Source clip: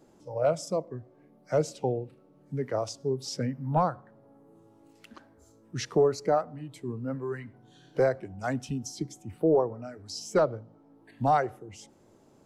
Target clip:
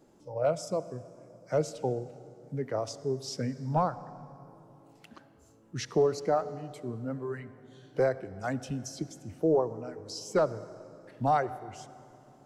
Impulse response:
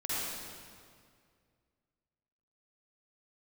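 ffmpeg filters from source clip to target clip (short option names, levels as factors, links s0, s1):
-filter_complex "[0:a]asplit=2[s0][s1];[1:a]atrim=start_sample=2205,asetrate=29106,aresample=44100[s2];[s1][s2]afir=irnorm=-1:irlink=0,volume=0.0596[s3];[s0][s3]amix=inputs=2:normalize=0,volume=0.75"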